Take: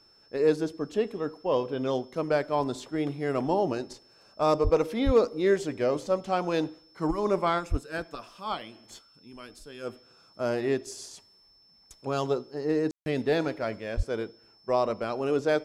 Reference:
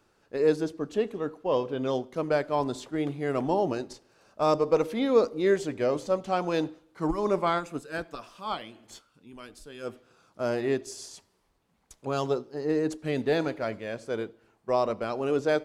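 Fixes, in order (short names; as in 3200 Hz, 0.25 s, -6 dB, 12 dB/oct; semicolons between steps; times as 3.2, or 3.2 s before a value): clip repair -13 dBFS; notch 5300 Hz, Q 30; de-plosive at 4.63/5.05/7.7/13.96; room tone fill 12.91–13.06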